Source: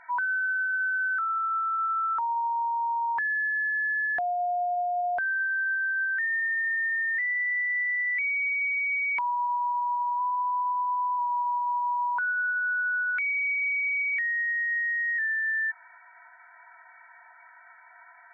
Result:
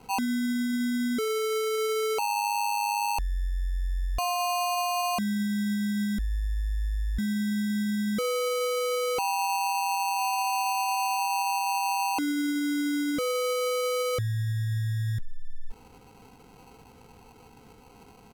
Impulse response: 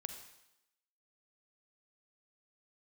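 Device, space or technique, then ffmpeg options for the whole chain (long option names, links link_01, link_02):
crushed at another speed: -af "asetrate=55125,aresample=44100,acrusher=samples=20:mix=1:aa=0.000001,asetrate=35280,aresample=44100"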